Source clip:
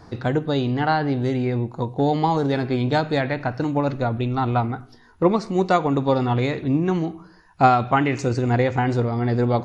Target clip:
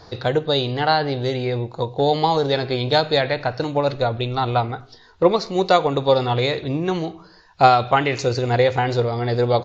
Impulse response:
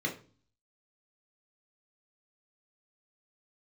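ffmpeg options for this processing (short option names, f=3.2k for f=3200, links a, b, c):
-af "aresample=16000,aresample=44100,equalizer=f=250:t=o:w=1:g=-8,equalizer=f=500:t=o:w=1:g=7,equalizer=f=4k:t=o:w=1:g=12"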